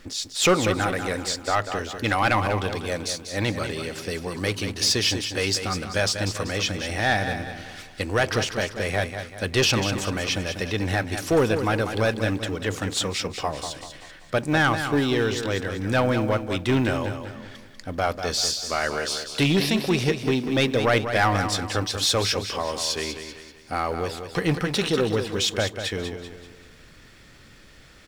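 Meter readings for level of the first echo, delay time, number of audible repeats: -8.5 dB, 0.193 s, 4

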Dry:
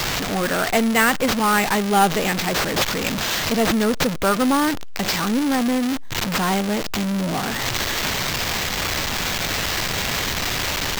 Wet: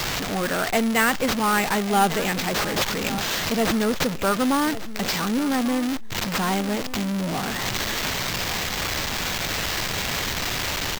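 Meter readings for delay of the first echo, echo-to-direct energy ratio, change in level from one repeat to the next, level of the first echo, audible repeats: 1.144 s, -15.0 dB, -14.0 dB, -15.0 dB, 2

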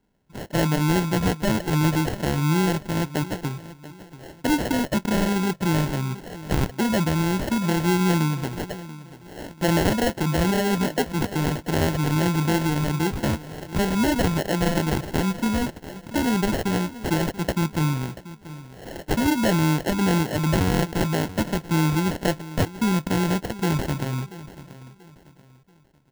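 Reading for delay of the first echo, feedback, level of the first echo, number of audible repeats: 0.685 s, 34%, -16.5 dB, 2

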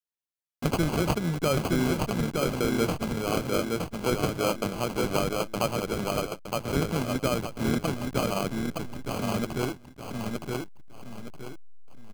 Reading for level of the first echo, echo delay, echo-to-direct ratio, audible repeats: -3.0 dB, 0.917 s, -2.5 dB, 3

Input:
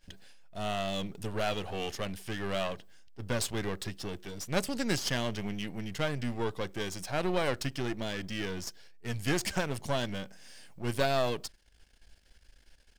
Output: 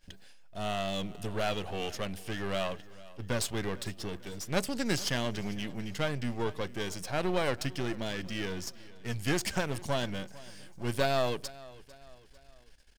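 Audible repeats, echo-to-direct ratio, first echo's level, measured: 3, -19.0 dB, -20.0 dB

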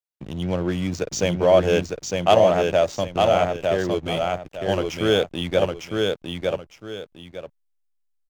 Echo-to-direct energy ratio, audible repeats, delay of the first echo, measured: -3.0 dB, 2, 0.906 s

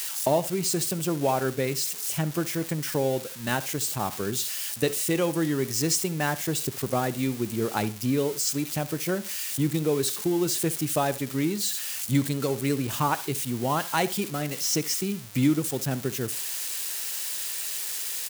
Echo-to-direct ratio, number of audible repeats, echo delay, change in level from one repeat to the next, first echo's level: -18.0 dB, 2, 67 ms, -11.5 dB, -18.5 dB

